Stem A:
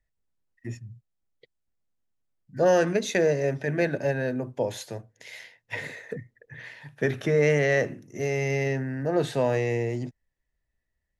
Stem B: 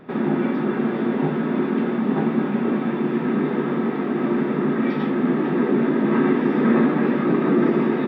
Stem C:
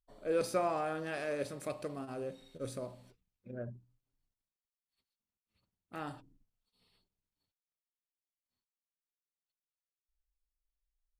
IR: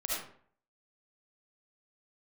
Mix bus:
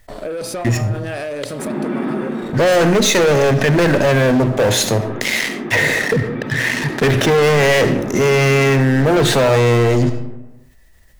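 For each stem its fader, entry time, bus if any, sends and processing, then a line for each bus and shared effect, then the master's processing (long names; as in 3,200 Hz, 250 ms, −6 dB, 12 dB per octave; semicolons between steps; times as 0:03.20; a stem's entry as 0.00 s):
−1.5 dB, 0.00 s, send −15 dB, leveller curve on the samples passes 5
−6.5 dB, 1.50 s, no send, automatic ducking −11 dB, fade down 0.45 s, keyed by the first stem
−0.5 dB, 0.00 s, no send, parametric band 640 Hz +4.5 dB 0.2 octaves; leveller curve on the samples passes 2; downward compressor, threshold −37 dBFS, peak gain reduction 12 dB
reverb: on, RT60 0.55 s, pre-delay 30 ms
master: envelope flattener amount 50%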